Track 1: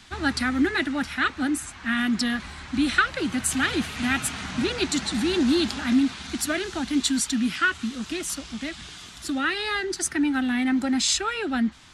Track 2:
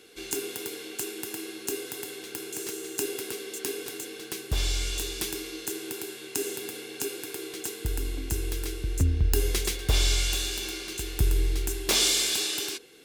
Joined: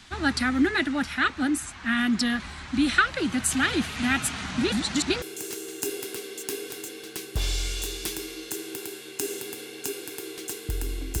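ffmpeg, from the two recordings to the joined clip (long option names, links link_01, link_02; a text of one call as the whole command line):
ffmpeg -i cue0.wav -i cue1.wav -filter_complex "[0:a]apad=whole_dur=11.2,atrim=end=11.2,asplit=2[link_01][link_02];[link_01]atrim=end=4.722[link_03];[link_02]atrim=start=4.718:end=5.222,asetpts=PTS-STARTPTS,areverse[link_04];[1:a]atrim=start=2.378:end=8.36[link_05];[link_03][link_04]acrossfade=duration=0.004:curve1=hsin:curve2=hsin[link_06];[link_06][link_05]acrossfade=duration=0.004:curve1=hsin:curve2=hsin" out.wav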